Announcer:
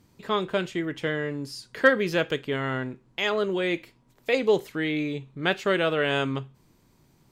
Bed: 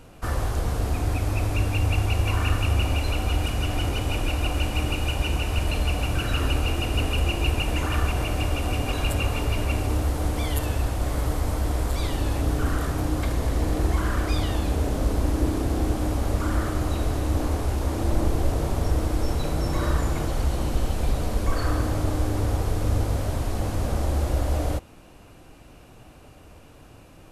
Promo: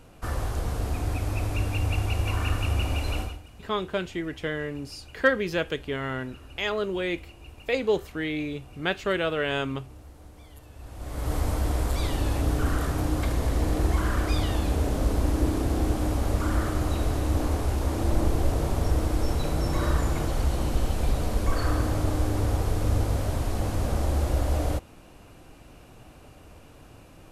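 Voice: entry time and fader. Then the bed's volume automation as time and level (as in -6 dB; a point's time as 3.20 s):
3.40 s, -2.5 dB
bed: 3.21 s -3.5 dB
3.43 s -23 dB
10.69 s -23 dB
11.35 s -1 dB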